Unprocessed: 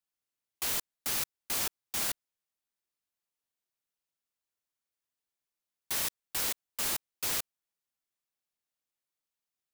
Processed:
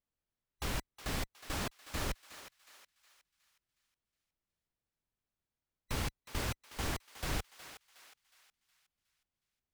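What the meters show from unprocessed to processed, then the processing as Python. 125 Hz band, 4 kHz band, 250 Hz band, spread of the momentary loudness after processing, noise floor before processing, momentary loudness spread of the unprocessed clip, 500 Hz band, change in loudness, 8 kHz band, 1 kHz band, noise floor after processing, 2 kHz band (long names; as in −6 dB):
+12.5 dB, −6.0 dB, +6.0 dB, 13 LU, below −85 dBFS, 2 LU, +2.5 dB, −7.5 dB, −11.5 dB, +0.5 dB, below −85 dBFS, −2.0 dB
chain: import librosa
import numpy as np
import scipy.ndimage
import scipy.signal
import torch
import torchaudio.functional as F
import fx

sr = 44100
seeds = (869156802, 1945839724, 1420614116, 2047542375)

y = fx.band_invert(x, sr, width_hz=2000)
y = fx.riaa(y, sr, side='playback')
y = fx.echo_thinned(y, sr, ms=365, feedback_pct=44, hz=830.0, wet_db=-11.0)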